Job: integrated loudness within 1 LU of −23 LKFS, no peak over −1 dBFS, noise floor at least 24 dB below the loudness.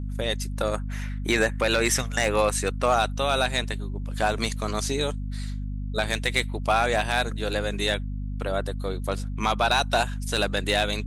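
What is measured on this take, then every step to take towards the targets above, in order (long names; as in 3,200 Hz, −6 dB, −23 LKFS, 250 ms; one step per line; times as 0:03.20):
share of clipped samples 0.3%; peaks flattened at −13.0 dBFS; mains hum 50 Hz; hum harmonics up to 250 Hz; level of the hum −28 dBFS; integrated loudness −25.5 LKFS; sample peak −13.0 dBFS; target loudness −23.0 LKFS
→ clipped peaks rebuilt −13 dBFS
mains-hum notches 50/100/150/200/250 Hz
level +2.5 dB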